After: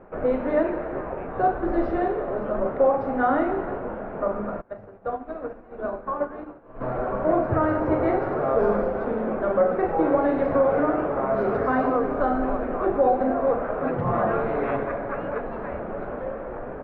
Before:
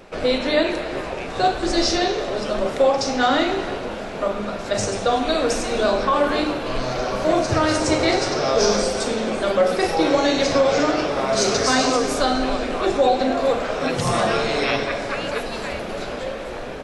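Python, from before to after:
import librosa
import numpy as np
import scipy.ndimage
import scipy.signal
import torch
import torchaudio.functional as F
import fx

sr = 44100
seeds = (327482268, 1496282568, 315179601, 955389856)

y = scipy.signal.sosfilt(scipy.signal.butter(4, 1500.0, 'lowpass', fs=sr, output='sos'), x)
y = fx.upward_expand(y, sr, threshold_db=-30.0, expansion=2.5, at=(4.6, 6.8), fade=0.02)
y = F.gain(torch.from_numpy(y), -2.5).numpy()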